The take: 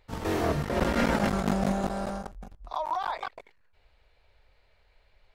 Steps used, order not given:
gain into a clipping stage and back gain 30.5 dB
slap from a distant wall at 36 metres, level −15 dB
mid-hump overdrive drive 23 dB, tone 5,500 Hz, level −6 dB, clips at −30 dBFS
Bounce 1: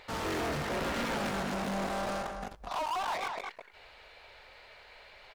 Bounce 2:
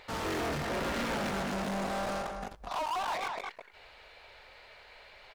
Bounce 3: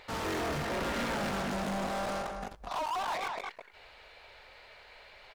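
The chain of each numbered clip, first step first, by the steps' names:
gain into a clipping stage and back, then slap from a distant wall, then mid-hump overdrive
slap from a distant wall, then gain into a clipping stage and back, then mid-hump overdrive
slap from a distant wall, then mid-hump overdrive, then gain into a clipping stage and back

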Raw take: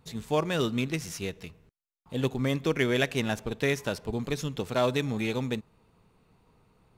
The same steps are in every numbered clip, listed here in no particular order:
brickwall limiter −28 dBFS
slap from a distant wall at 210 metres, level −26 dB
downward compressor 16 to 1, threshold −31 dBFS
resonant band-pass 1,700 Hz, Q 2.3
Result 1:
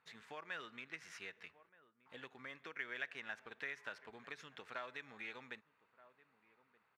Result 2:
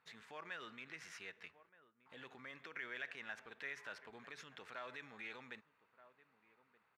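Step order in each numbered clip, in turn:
slap from a distant wall, then downward compressor, then resonant band-pass, then brickwall limiter
slap from a distant wall, then brickwall limiter, then resonant band-pass, then downward compressor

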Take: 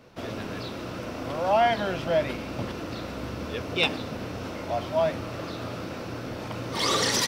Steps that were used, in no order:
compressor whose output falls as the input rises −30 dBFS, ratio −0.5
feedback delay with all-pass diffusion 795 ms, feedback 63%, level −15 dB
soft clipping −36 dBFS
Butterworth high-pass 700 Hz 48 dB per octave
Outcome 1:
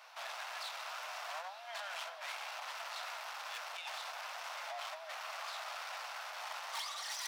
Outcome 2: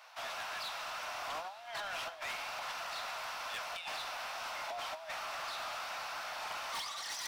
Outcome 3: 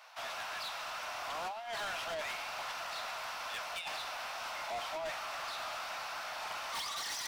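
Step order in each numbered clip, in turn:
compressor whose output falls as the input rises, then feedback delay with all-pass diffusion, then soft clipping, then Butterworth high-pass
compressor whose output falls as the input rises, then Butterworth high-pass, then soft clipping, then feedback delay with all-pass diffusion
Butterworth high-pass, then compressor whose output falls as the input rises, then soft clipping, then feedback delay with all-pass diffusion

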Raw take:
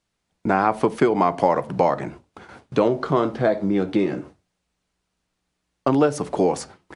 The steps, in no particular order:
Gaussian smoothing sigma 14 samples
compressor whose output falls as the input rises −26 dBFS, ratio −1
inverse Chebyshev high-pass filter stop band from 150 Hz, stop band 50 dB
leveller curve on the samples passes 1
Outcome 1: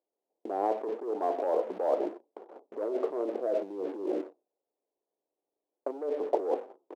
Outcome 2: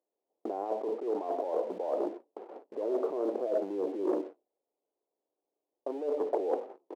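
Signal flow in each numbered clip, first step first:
Gaussian smoothing, then leveller curve on the samples, then compressor whose output falls as the input rises, then inverse Chebyshev high-pass filter
compressor whose output falls as the input rises, then Gaussian smoothing, then leveller curve on the samples, then inverse Chebyshev high-pass filter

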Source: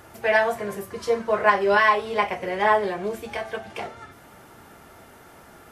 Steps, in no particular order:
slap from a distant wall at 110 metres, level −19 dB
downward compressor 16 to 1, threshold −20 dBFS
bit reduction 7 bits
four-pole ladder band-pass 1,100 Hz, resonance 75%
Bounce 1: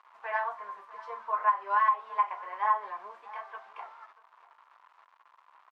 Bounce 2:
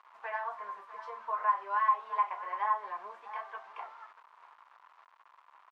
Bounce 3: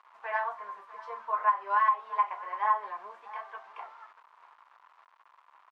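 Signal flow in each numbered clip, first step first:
bit reduction, then four-pole ladder band-pass, then downward compressor, then slap from a distant wall
slap from a distant wall, then downward compressor, then bit reduction, then four-pole ladder band-pass
slap from a distant wall, then bit reduction, then four-pole ladder band-pass, then downward compressor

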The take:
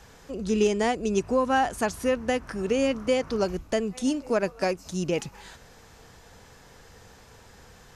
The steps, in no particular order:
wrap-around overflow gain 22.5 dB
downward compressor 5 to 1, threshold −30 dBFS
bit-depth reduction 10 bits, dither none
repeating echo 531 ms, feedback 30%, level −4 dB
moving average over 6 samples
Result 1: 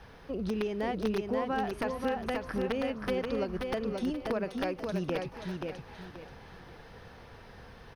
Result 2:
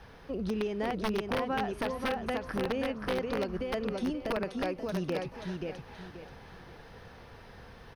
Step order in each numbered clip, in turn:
downward compressor, then wrap-around overflow, then repeating echo, then bit-depth reduction, then moving average
bit-depth reduction, then downward compressor, then repeating echo, then wrap-around overflow, then moving average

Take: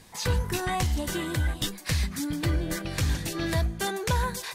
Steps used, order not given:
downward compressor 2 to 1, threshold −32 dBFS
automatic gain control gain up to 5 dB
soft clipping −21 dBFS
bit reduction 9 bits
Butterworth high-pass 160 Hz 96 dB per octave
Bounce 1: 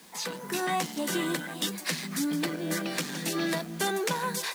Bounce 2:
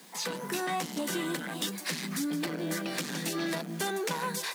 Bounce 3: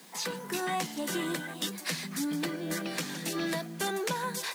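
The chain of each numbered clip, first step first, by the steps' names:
soft clipping, then downward compressor, then Butterworth high-pass, then bit reduction, then automatic gain control
bit reduction, then automatic gain control, then soft clipping, then Butterworth high-pass, then downward compressor
automatic gain control, then downward compressor, then bit reduction, then Butterworth high-pass, then soft clipping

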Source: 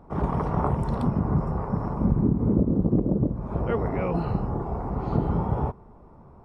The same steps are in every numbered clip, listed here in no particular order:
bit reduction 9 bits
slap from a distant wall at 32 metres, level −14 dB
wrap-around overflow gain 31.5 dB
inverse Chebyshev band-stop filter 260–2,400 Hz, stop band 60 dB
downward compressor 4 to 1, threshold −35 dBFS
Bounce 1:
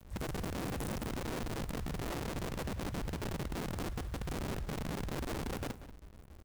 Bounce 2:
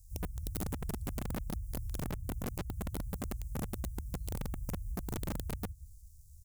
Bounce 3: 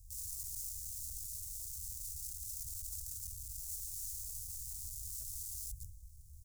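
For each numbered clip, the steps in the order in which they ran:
inverse Chebyshev band-stop filter, then wrap-around overflow, then downward compressor, then bit reduction, then slap from a distant wall
bit reduction, then inverse Chebyshev band-stop filter, then downward compressor, then slap from a distant wall, then wrap-around overflow
slap from a distant wall, then wrap-around overflow, then bit reduction, then inverse Chebyshev band-stop filter, then downward compressor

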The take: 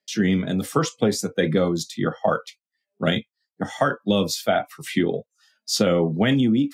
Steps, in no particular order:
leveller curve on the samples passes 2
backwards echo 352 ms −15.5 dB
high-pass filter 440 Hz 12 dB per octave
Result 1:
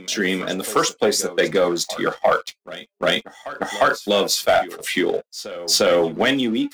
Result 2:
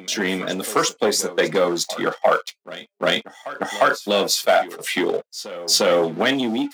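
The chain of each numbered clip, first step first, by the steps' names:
high-pass filter, then leveller curve on the samples, then backwards echo
leveller curve on the samples, then backwards echo, then high-pass filter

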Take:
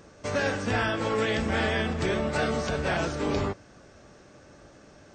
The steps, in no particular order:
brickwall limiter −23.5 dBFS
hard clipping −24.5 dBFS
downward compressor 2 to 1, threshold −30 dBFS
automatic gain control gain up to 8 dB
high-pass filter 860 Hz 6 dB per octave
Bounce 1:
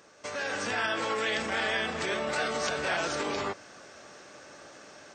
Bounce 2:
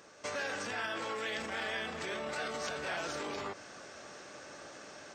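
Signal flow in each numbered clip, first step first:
brickwall limiter, then downward compressor, then high-pass filter, then hard clipping, then automatic gain control
automatic gain control, then brickwall limiter, then hard clipping, then downward compressor, then high-pass filter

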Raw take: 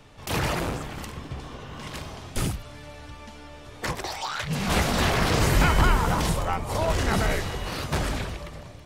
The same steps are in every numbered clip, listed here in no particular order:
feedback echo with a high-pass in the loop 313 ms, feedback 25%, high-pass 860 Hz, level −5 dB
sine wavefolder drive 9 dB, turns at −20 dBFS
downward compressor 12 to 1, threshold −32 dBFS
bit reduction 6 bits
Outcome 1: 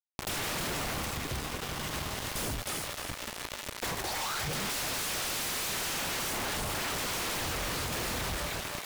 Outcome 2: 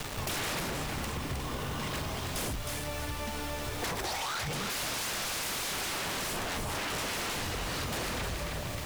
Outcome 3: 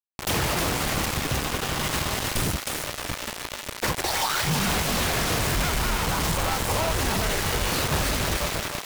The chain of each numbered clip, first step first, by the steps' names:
bit reduction, then feedback echo with a high-pass in the loop, then sine wavefolder, then downward compressor
sine wavefolder, then bit reduction, then feedback echo with a high-pass in the loop, then downward compressor
downward compressor, then bit reduction, then feedback echo with a high-pass in the loop, then sine wavefolder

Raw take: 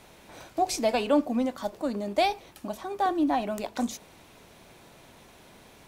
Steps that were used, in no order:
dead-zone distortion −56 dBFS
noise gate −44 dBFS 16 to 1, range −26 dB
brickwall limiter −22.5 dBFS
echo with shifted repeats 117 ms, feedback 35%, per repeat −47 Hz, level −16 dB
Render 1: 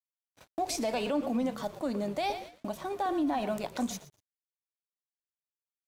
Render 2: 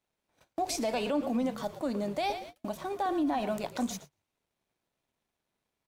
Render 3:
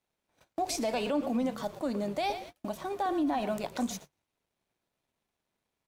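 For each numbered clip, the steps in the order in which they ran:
noise gate, then echo with shifted repeats, then brickwall limiter, then dead-zone distortion
dead-zone distortion, then echo with shifted repeats, then noise gate, then brickwall limiter
echo with shifted repeats, then dead-zone distortion, then noise gate, then brickwall limiter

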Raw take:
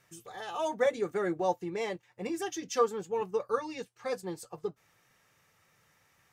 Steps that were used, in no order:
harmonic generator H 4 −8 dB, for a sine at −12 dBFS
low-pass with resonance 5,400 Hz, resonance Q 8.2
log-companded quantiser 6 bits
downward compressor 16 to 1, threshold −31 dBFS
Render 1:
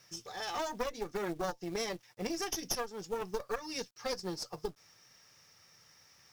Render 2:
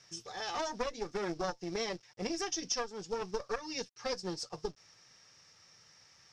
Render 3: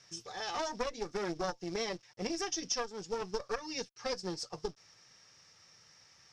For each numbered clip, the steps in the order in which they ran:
low-pass with resonance, then log-companded quantiser, then harmonic generator, then downward compressor
harmonic generator, then log-companded quantiser, then low-pass with resonance, then downward compressor
log-companded quantiser, then harmonic generator, then low-pass with resonance, then downward compressor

